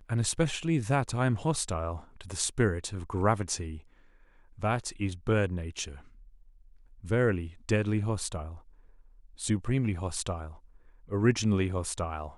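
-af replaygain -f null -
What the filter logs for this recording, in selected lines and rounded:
track_gain = +10.8 dB
track_peak = 0.220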